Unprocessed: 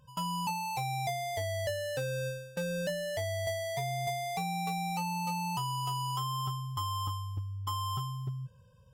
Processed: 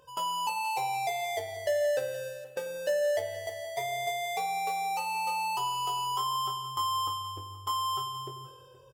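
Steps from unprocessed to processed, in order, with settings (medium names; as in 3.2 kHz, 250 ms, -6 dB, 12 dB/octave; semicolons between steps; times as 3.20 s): resonant low shelf 270 Hz -13.5 dB, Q 3; band-stop 4 kHz, Q 24; in parallel at +2.5 dB: compression, threshold -46 dBFS, peak gain reduction 16.5 dB; on the sum: doubling 22 ms -6 dB; delay 473 ms -17.5 dB; spring tank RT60 1.5 s, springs 44/48 ms, chirp 45 ms, DRR 7.5 dB; trim -1.5 dB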